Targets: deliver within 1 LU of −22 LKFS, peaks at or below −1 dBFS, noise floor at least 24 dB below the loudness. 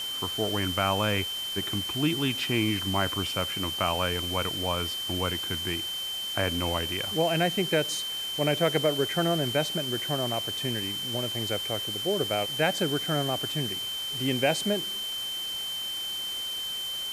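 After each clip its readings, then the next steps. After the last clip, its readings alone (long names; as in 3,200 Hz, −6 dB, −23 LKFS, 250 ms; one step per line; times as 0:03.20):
interfering tone 3,100 Hz; level of the tone −31 dBFS; background noise floor −34 dBFS; target noise floor −52 dBFS; integrated loudness −27.5 LKFS; sample peak −10.0 dBFS; target loudness −22.0 LKFS
→ notch filter 3,100 Hz, Q 30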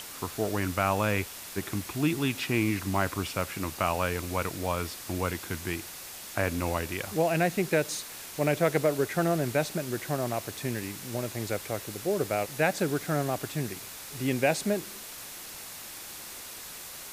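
interfering tone none found; background noise floor −43 dBFS; target noise floor −55 dBFS
→ broadband denoise 12 dB, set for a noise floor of −43 dBFS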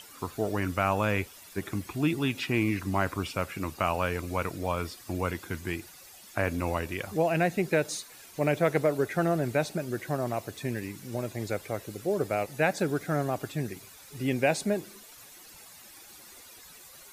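background noise floor −51 dBFS; target noise floor −54 dBFS
→ broadband denoise 6 dB, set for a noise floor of −51 dBFS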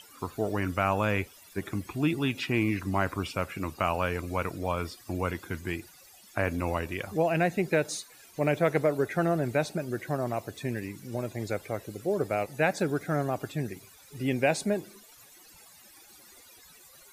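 background noise floor −55 dBFS; integrated loudness −30.0 LKFS; sample peak −10.5 dBFS; target loudness −22.0 LKFS
→ level +8 dB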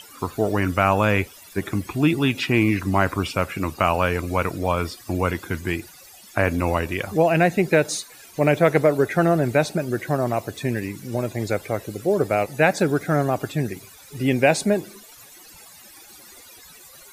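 integrated loudness −22.0 LKFS; sample peak −2.5 dBFS; background noise floor −47 dBFS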